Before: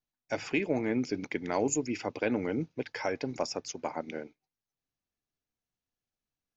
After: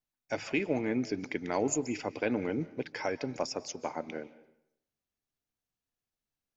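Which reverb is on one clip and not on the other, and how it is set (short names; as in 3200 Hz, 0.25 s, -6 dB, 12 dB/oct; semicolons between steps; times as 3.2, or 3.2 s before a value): digital reverb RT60 0.77 s, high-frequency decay 0.8×, pre-delay 0.11 s, DRR 17 dB; gain -1 dB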